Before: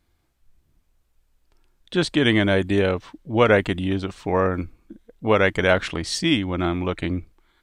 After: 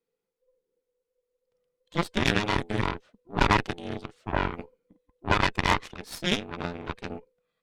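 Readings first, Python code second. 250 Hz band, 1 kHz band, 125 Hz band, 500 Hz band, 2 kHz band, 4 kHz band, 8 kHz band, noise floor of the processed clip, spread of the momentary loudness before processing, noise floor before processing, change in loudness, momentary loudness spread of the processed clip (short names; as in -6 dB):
-9.5 dB, -1.0 dB, -6.5 dB, -12.0 dB, -5.0 dB, -4.5 dB, -5.0 dB, -85 dBFS, 10 LU, -68 dBFS, -6.5 dB, 16 LU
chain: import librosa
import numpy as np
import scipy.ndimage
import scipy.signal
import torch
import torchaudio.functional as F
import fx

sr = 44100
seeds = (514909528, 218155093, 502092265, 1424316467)

y = fx.band_invert(x, sr, width_hz=500)
y = fx.cheby_harmonics(y, sr, harmonics=(4, 5, 7), levels_db=(-8, -37, -19), full_scale_db=-3.5)
y = y * 10.0 ** (-7.0 / 20.0)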